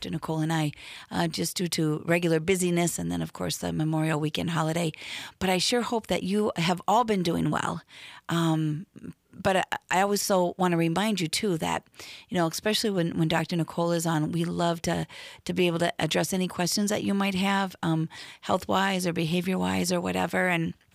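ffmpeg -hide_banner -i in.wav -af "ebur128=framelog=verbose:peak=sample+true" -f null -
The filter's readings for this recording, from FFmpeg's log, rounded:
Integrated loudness:
  I:         -26.8 LUFS
  Threshold: -37.1 LUFS
Loudness range:
  LRA:         1.2 LU
  Threshold: -47.0 LUFS
  LRA low:   -27.7 LUFS
  LRA high:  -26.4 LUFS
Sample peak:
  Peak:      -10.9 dBFS
True peak:
  Peak:      -10.9 dBFS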